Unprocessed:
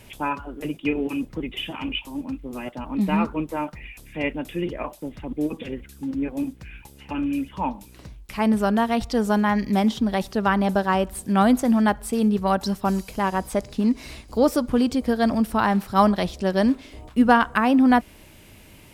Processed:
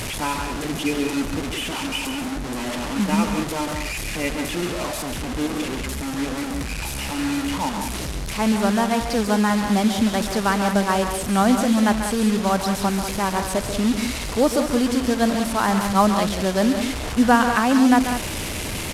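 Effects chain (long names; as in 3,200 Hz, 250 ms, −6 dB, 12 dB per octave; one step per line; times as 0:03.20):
linear delta modulator 64 kbit/s, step −22.5 dBFS
loudspeakers that aren't time-aligned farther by 48 metres −9 dB, 65 metres −9 dB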